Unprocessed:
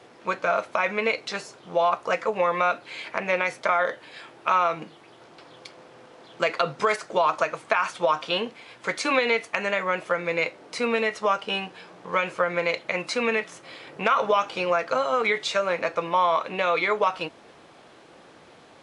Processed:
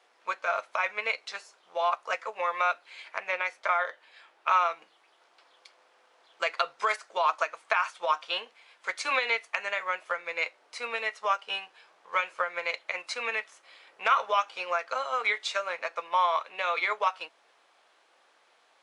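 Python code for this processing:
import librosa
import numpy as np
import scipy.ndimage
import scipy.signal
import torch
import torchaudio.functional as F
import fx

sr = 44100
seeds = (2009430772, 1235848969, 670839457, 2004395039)

y = fx.high_shelf(x, sr, hz=6900.0, db=-7.5, at=(3.28, 4.53))
y = scipy.signal.sosfilt(scipy.signal.butter(2, 780.0, 'highpass', fs=sr, output='sos'), y)
y = fx.upward_expand(y, sr, threshold_db=-39.0, expansion=1.5)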